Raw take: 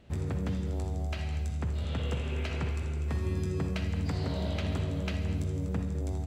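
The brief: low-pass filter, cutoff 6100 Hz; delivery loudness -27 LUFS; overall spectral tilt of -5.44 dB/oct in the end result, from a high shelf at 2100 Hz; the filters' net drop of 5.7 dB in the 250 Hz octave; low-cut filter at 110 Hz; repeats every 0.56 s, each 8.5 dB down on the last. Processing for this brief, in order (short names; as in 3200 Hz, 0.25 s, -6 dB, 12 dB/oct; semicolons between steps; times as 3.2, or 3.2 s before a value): HPF 110 Hz; LPF 6100 Hz; bell 250 Hz -8.5 dB; high shelf 2100 Hz +5.5 dB; feedback echo 0.56 s, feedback 38%, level -8.5 dB; gain +10 dB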